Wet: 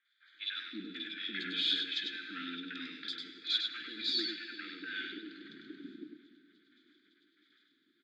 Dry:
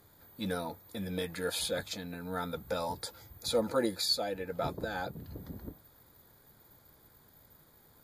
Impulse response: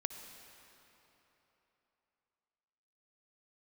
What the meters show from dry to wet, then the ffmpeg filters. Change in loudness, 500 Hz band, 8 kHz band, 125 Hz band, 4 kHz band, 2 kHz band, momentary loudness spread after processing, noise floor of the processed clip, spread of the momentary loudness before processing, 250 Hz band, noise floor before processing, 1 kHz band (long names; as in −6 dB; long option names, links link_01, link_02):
−1.0 dB, −19.5 dB, below −15 dB, below −15 dB, +4.0 dB, +2.5 dB, 17 LU, −74 dBFS, 15 LU, −6.0 dB, −62 dBFS, −13.5 dB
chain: -filter_complex "[0:a]agate=range=-15dB:threshold=-58dB:ratio=16:detection=peak,equalizer=frequency=610:width_type=o:width=1.8:gain=12,acompressor=threshold=-30dB:ratio=4,asoftclip=type=tanh:threshold=-28dB,asuperstop=centerf=710:order=12:qfactor=0.57,highpass=frequency=370:width=0.5412,highpass=frequency=370:width=1.3066,equalizer=frequency=740:width_type=q:width=4:gain=7,equalizer=frequency=1100:width_type=q:width=4:gain=5,equalizer=frequency=1800:width_type=q:width=4:gain=-3,equalizer=frequency=3400:width_type=q:width=4:gain=9,lowpass=frequency=3700:width=0.5412,lowpass=frequency=3700:width=1.3066,acrossover=split=780|2900[link_01][link_02][link_03];[link_03]adelay=50[link_04];[link_01]adelay=340[link_05];[link_05][link_02][link_04]amix=inputs=3:normalize=0,asplit=2[link_06][link_07];[1:a]atrim=start_sample=2205,adelay=99[link_08];[link_07][link_08]afir=irnorm=-1:irlink=0,volume=-4dB[link_09];[link_06][link_09]amix=inputs=2:normalize=0,volume=8.5dB"